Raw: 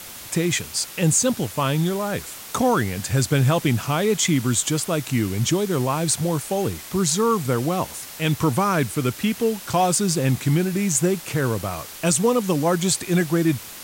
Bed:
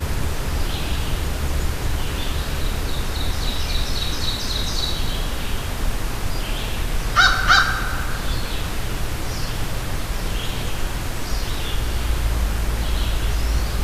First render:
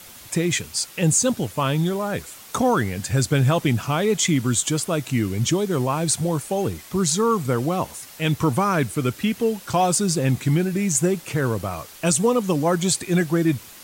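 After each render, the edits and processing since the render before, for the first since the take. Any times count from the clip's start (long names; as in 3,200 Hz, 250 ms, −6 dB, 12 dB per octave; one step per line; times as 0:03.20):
broadband denoise 6 dB, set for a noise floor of −38 dBFS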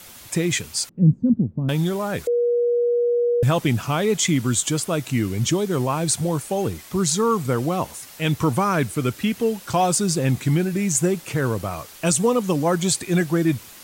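0:00.89–0:01.69: low-pass with resonance 220 Hz, resonance Q 2.7
0:02.27–0:03.43: beep over 479 Hz −16.5 dBFS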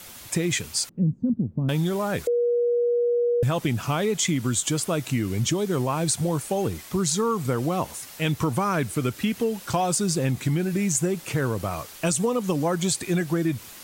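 downward compressor, threshold −20 dBFS, peak gain reduction 9.5 dB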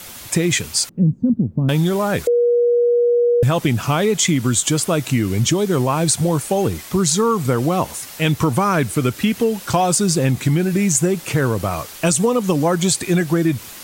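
level +7 dB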